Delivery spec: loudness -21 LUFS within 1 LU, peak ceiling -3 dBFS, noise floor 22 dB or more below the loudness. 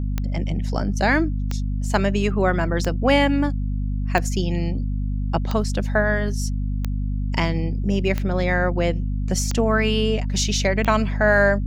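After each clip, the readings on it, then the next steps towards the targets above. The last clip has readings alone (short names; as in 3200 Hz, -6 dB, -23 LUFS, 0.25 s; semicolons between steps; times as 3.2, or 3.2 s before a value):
clicks 9; hum 50 Hz; harmonics up to 250 Hz; hum level -21 dBFS; loudness -22.0 LUFS; peak -3.0 dBFS; loudness target -21.0 LUFS
-> de-click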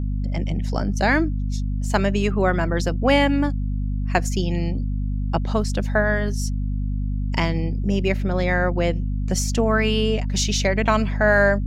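clicks 0; hum 50 Hz; harmonics up to 250 Hz; hum level -21 dBFS
-> notches 50/100/150/200/250 Hz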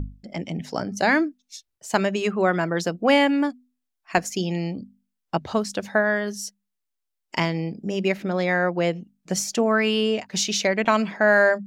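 hum none; loudness -23.0 LUFS; peak -4.0 dBFS; loudness target -21.0 LUFS
-> gain +2 dB; limiter -3 dBFS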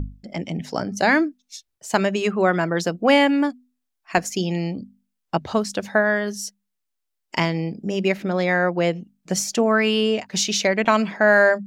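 loudness -21.0 LUFS; peak -3.0 dBFS; noise floor -78 dBFS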